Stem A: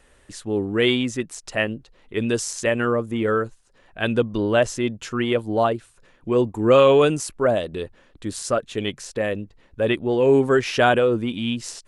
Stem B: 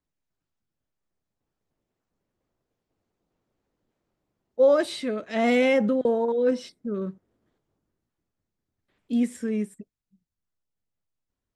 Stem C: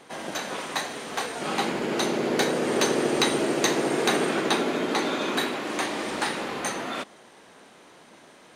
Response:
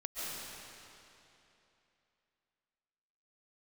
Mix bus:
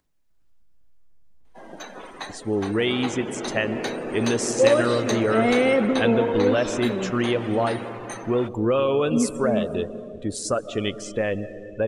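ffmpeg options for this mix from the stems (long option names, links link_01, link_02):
-filter_complex "[0:a]acompressor=threshold=-21dB:ratio=4,adelay=2000,volume=0dB,asplit=2[link_01][link_02];[link_02]volume=-11.5dB[link_03];[1:a]acompressor=mode=upward:threshold=-42dB:ratio=2.5,volume=-0.5dB,asplit=2[link_04][link_05];[link_05]volume=-12dB[link_06];[2:a]adelay=1450,volume=-6dB,asplit=2[link_07][link_08];[link_08]volume=-17dB[link_09];[3:a]atrim=start_sample=2205[link_10];[link_03][link_06][link_09]amix=inputs=3:normalize=0[link_11];[link_11][link_10]afir=irnorm=-1:irlink=0[link_12];[link_01][link_04][link_07][link_12]amix=inputs=4:normalize=0,afftdn=noise_reduction=16:noise_floor=-39"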